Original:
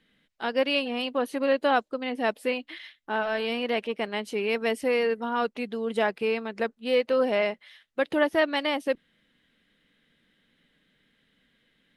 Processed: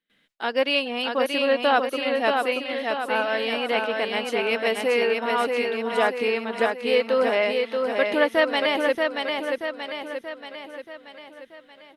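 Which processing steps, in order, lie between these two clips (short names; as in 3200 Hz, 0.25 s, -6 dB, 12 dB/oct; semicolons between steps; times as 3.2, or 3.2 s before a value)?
gate with hold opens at -58 dBFS; low shelf 230 Hz -11 dB; feedback echo 0.631 s, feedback 53%, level -4 dB; gain +4 dB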